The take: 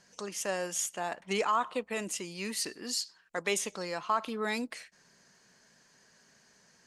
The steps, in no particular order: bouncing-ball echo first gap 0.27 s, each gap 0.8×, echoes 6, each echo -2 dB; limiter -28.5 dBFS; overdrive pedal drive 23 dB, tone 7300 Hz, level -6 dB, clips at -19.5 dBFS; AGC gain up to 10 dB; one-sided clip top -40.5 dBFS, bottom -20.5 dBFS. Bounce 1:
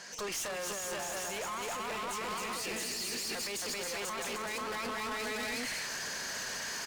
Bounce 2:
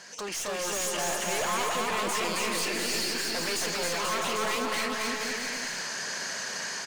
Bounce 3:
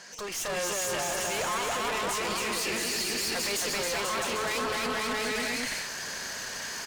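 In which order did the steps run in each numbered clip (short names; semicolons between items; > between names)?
bouncing-ball echo > AGC > overdrive pedal > limiter > one-sided clip; AGC > one-sided clip > overdrive pedal > limiter > bouncing-ball echo; overdrive pedal > bouncing-ball echo > limiter > AGC > one-sided clip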